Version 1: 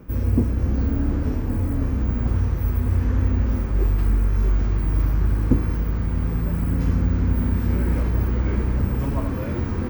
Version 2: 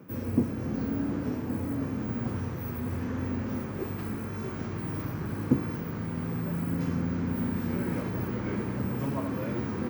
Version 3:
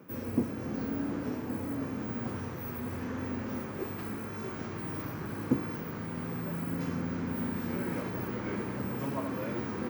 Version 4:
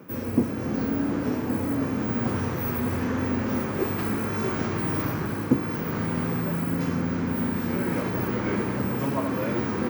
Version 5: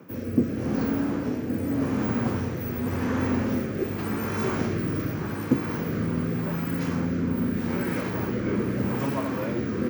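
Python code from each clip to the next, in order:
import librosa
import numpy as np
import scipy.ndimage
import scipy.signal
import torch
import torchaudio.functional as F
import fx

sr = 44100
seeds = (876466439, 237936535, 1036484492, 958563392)

y1 = scipy.signal.sosfilt(scipy.signal.butter(4, 120.0, 'highpass', fs=sr, output='sos'), x)
y1 = F.gain(torch.from_numpy(y1), -3.5).numpy()
y2 = fx.low_shelf(y1, sr, hz=200.0, db=-9.0)
y3 = fx.rider(y2, sr, range_db=10, speed_s=0.5)
y3 = F.gain(torch.from_numpy(y3), 8.5).numpy()
y4 = fx.rotary(y3, sr, hz=0.85)
y4 = F.gain(torch.from_numpy(y4), 1.5).numpy()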